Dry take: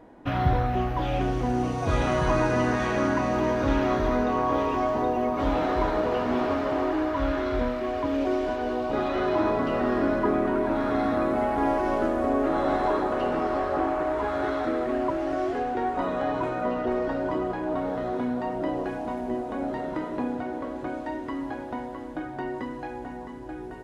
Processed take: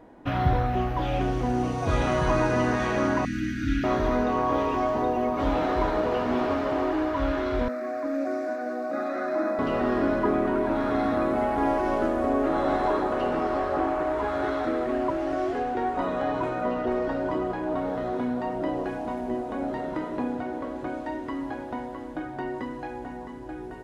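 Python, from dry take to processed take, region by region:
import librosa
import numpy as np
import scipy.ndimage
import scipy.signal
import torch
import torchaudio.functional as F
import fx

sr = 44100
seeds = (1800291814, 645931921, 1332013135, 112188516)

y = fx.chain(x, sr, fx.cheby1_bandstop(low_hz=320.0, high_hz=1400.0, order=5),
    fx.peak_eq(hz=1000.0, db=-13.5, octaves=0.22), at=(3.25, 3.84))
y = fx.chain(y, sr, fx.highpass(hz=240.0, slope=12),
    fx.fixed_phaser(hz=620.0, stages=8), at=(7.68, 9.59))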